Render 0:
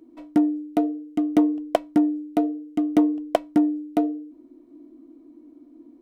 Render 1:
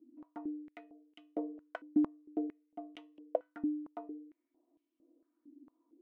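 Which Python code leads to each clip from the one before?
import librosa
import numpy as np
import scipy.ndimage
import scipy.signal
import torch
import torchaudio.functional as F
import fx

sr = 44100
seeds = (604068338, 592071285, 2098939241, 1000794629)

y = fx.comb_fb(x, sr, f0_hz=500.0, decay_s=0.26, harmonics='all', damping=0.0, mix_pct=50)
y = fx.filter_held_bandpass(y, sr, hz=4.4, low_hz=270.0, high_hz=2900.0)
y = F.gain(torch.from_numpy(y), -1.5).numpy()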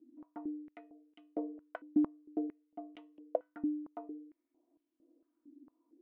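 y = fx.lowpass(x, sr, hz=1700.0, slope=6)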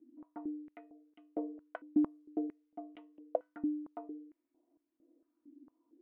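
y = fx.env_lowpass(x, sr, base_hz=2000.0, full_db=-31.5)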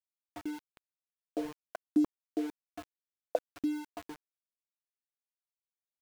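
y = fx.dynamic_eq(x, sr, hz=460.0, q=1.8, threshold_db=-45.0, ratio=4.0, max_db=3)
y = np.where(np.abs(y) >= 10.0 ** (-42.0 / 20.0), y, 0.0)
y = F.gain(torch.from_numpy(y), 1.5).numpy()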